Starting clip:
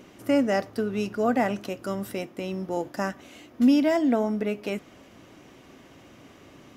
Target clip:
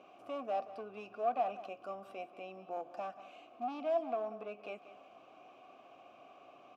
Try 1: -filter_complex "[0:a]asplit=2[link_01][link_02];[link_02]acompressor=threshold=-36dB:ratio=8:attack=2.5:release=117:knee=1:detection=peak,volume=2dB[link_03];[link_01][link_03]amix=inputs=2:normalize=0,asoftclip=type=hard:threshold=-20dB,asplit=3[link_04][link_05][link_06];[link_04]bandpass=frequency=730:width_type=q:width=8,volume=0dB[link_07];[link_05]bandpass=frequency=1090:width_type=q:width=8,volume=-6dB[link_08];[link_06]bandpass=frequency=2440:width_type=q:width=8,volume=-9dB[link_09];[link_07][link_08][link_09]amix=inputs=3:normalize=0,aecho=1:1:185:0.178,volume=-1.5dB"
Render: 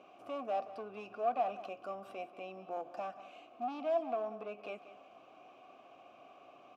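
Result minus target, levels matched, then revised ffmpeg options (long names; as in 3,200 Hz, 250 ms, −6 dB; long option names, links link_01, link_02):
downward compressor: peak gain reduction −6.5 dB
-filter_complex "[0:a]asplit=2[link_01][link_02];[link_02]acompressor=threshold=-43.5dB:ratio=8:attack=2.5:release=117:knee=1:detection=peak,volume=2dB[link_03];[link_01][link_03]amix=inputs=2:normalize=0,asoftclip=type=hard:threshold=-20dB,asplit=3[link_04][link_05][link_06];[link_04]bandpass=frequency=730:width_type=q:width=8,volume=0dB[link_07];[link_05]bandpass=frequency=1090:width_type=q:width=8,volume=-6dB[link_08];[link_06]bandpass=frequency=2440:width_type=q:width=8,volume=-9dB[link_09];[link_07][link_08][link_09]amix=inputs=3:normalize=0,aecho=1:1:185:0.178,volume=-1.5dB"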